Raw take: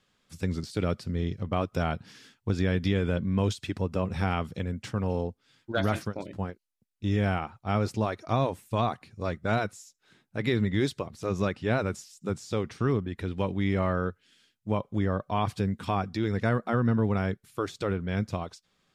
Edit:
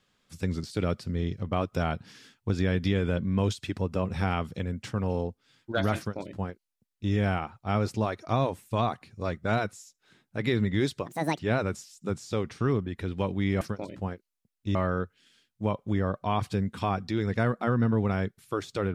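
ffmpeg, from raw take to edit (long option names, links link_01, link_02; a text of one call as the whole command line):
ffmpeg -i in.wav -filter_complex "[0:a]asplit=5[link_01][link_02][link_03][link_04][link_05];[link_01]atrim=end=11.064[link_06];[link_02]atrim=start=11.06:end=11.59,asetpts=PTS-STARTPTS,asetrate=70560,aresample=44100,atrim=end_sample=14608,asetpts=PTS-STARTPTS[link_07];[link_03]atrim=start=11.586:end=13.812[link_08];[link_04]atrim=start=5.978:end=7.122[link_09];[link_05]atrim=start=13.808[link_10];[link_06][link_07]acrossfade=duration=0.004:curve1=hsin:curve2=hsin[link_11];[link_11][link_08]acrossfade=duration=0.004:curve1=hsin:curve2=hsin[link_12];[link_12][link_09]acrossfade=duration=0.004:curve1=hsin:curve2=hsin[link_13];[link_13][link_10]acrossfade=duration=0.004:curve1=hsin:curve2=hsin" out.wav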